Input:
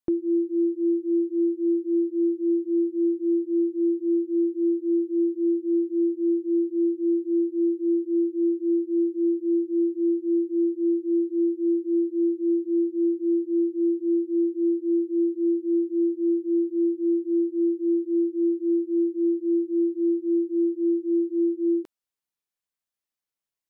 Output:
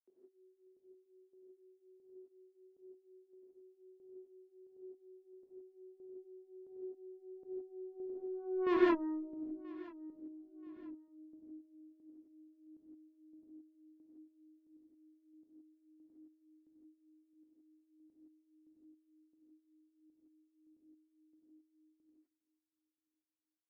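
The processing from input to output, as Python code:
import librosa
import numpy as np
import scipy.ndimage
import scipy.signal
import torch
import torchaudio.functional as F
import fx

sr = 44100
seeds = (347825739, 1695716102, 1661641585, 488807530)

y = fx.doppler_pass(x, sr, speed_mps=31, closest_m=1.6, pass_at_s=8.74)
y = scipy.signal.sosfilt(scipy.signal.butter(12, 200.0, 'highpass', fs=sr, output='sos'), y)
y = fx.tube_stage(y, sr, drive_db=34.0, bias=0.5)
y = fx.chopper(y, sr, hz=1.5, depth_pct=65, duty_pct=15)
y = fx.echo_feedback(y, sr, ms=980, feedback_pct=35, wet_db=-22.0)
y = fx.rev_gated(y, sr, seeds[0], gate_ms=190, shape='rising', drr_db=-7.0)
y = F.gain(torch.from_numpy(y), 4.0).numpy()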